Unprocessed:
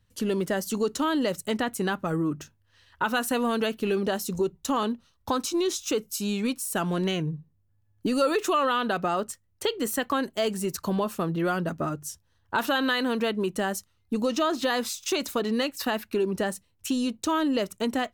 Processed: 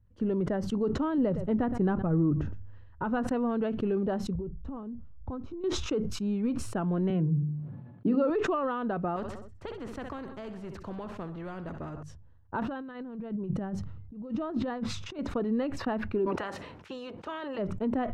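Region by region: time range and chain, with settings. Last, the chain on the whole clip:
1.18–3.27 s: tilt EQ -1.5 dB/octave + delay 117 ms -24 dB
4.35–5.64 s: RIAA curve playback + compression 12:1, threshold -34 dBFS
7.10–8.30 s: Chebyshev band-pass 130–4300 Hz, order 5 + bass shelf 230 Hz +8 dB + hum notches 50/100/150/200/250/300/350/400/450/500 Hz
9.16–12.03 s: treble shelf 5.9 kHz +9.5 dB + feedback delay 64 ms, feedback 46%, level -18 dB + spectrum-flattening compressor 2:1
12.60–15.19 s: peaking EQ 140 Hz +11 dB 1.1 oct + compressor with a negative ratio -31 dBFS, ratio -0.5
16.25–17.57 s: spectral peaks clipped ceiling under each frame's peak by 20 dB + high-pass 820 Hz 6 dB/octave
whole clip: Bessel low-pass 940 Hz, order 2; bass shelf 150 Hz +10.5 dB; decay stretcher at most 43 dB/s; trim -4.5 dB

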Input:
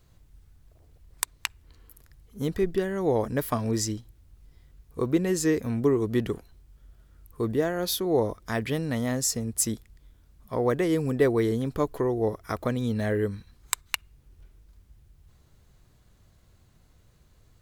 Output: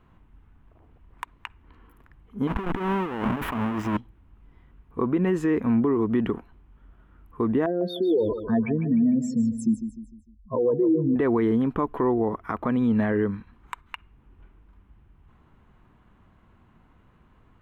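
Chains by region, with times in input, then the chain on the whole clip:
2.47–3.97 s: square wave that keeps the level + compressor with a negative ratio -32 dBFS
7.66–11.16 s: spectral contrast enhancement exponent 3.1 + feedback delay 151 ms, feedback 41%, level -11 dB
whole clip: FFT filter 130 Hz 0 dB, 230 Hz +10 dB, 570 Hz +1 dB, 970 Hz +12 dB, 1.9 kHz +4 dB, 2.9 kHz +2 dB, 4.6 kHz -18 dB; peak limiter -15 dBFS

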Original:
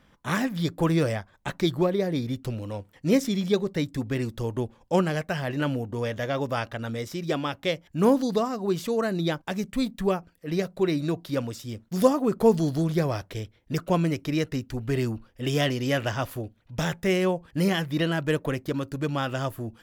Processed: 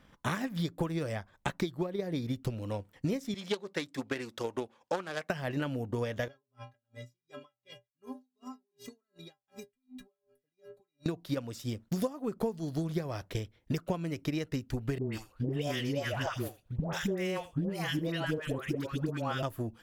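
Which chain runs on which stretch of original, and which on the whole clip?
3.34–5.30 s: self-modulated delay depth 0.16 ms + frequency weighting A
6.28–11.06 s: inharmonic resonator 120 Hz, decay 0.55 s, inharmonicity 0.03 + compression 4:1, threshold -42 dBFS + logarithmic tremolo 2.7 Hz, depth 39 dB
14.98–19.43 s: phase dispersion highs, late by 148 ms, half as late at 800 Hz + delay 82 ms -20 dB
whole clip: transient shaper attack +8 dB, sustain -2 dB; compression 10:1, threshold -27 dBFS; trim -2 dB

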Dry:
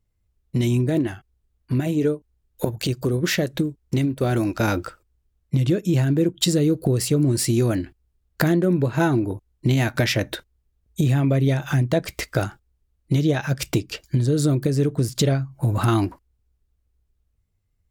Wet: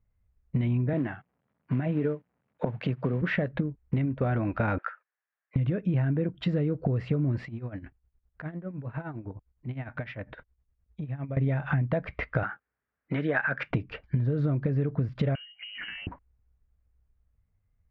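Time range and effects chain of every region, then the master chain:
0.93–3.22 s: companded quantiser 6-bit + high-pass 120 Hz 24 dB/octave
4.78–5.56 s: Bessel high-pass 960 Hz, order 4 + peaking EQ 1.7 kHz +11 dB 0.43 oct
7.45–11.37 s: compression 4:1, threshold -30 dBFS + tremolo 9.8 Hz, depth 78%
12.43–13.71 s: high-pass 270 Hz + peaking EQ 1.6 kHz +11.5 dB 0.88 oct
15.35–16.07 s: compression 10:1, threshold -30 dBFS + frequency inversion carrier 3 kHz
whole clip: low-pass 2.2 kHz 24 dB/octave; peaking EQ 350 Hz -10 dB 0.44 oct; compression, threshold -23 dBFS

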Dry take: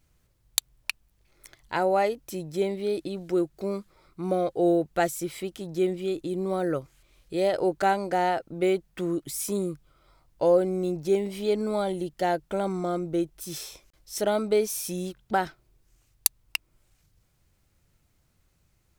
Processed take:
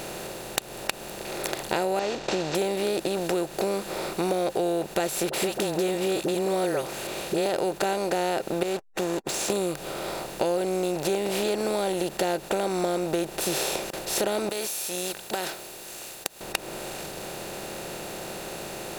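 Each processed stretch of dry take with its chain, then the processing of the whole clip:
1.99–2.55 s: CVSD coder 32 kbps + compression 2:1, threshold -31 dBFS
5.29–7.46 s: high-pass 69 Hz + phase dispersion highs, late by 45 ms, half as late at 760 Hz
8.63–9.50 s: four-pole ladder low-pass 7.3 kHz, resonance 65% + hysteresis with a dead band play -44.5 dBFS
14.49–16.41 s: pre-emphasis filter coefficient 0.97 + compression 4:1, threshold -47 dBFS
whole clip: spectral levelling over time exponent 0.4; compression 5:1, threshold -24 dBFS; trim +1 dB

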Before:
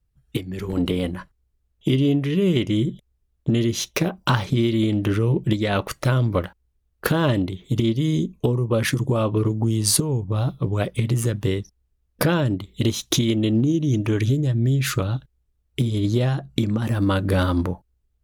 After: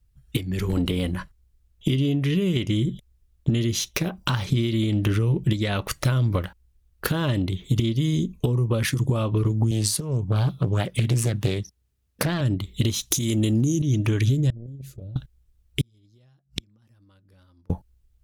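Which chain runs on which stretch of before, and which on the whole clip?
9.71–12.41 s: high-pass 97 Hz + loudspeaker Doppler distortion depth 0.64 ms
13.11–13.82 s: high-pass 43 Hz + resonant high shelf 5.1 kHz +10.5 dB, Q 1.5 + level flattener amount 70%
14.50–15.16 s: gate -15 dBFS, range -53 dB + FFT filter 590 Hz 0 dB, 1.1 kHz -30 dB, 13 kHz -11 dB + level flattener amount 100%
15.81–17.70 s: inverted gate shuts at -26 dBFS, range -41 dB + high-pass 42 Hz + peaking EQ 5.2 kHz +13.5 dB 0.2 oct
whole clip: tilt shelf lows -4.5 dB, about 1.4 kHz; compression 5:1, threshold -26 dBFS; bass shelf 190 Hz +11 dB; trim +2 dB

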